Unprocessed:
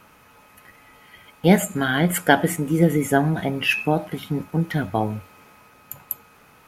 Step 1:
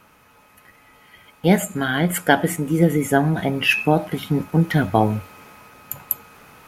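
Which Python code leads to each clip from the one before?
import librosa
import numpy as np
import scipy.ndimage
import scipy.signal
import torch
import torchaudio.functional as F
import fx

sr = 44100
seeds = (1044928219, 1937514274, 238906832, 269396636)

y = fx.rider(x, sr, range_db=10, speed_s=2.0)
y = y * librosa.db_to_amplitude(2.0)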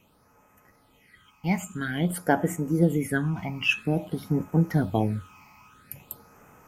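y = fx.phaser_stages(x, sr, stages=8, low_hz=470.0, high_hz=4000.0, hz=0.5, feedback_pct=30)
y = y * librosa.db_to_amplitude(-6.0)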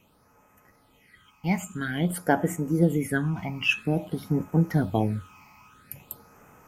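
y = x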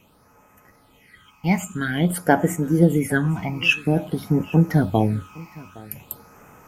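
y = x + 10.0 ** (-22.0 / 20.0) * np.pad(x, (int(814 * sr / 1000.0), 0))[:len(x)]
y = y * librosa.db_to_amplitude(5.5)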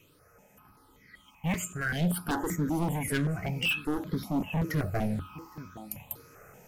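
y = np.clip(10.0 ** (21.0 / 20.0) * x, -1.0, 1.0) / 10.0 ** (21.0 / 20.0)
y = fx.phaser_held(y, sr, hz=5.2, low_hz=210.0, high_hz=2800.0)
y = y * librosa.db_to_amplitude(-1.5)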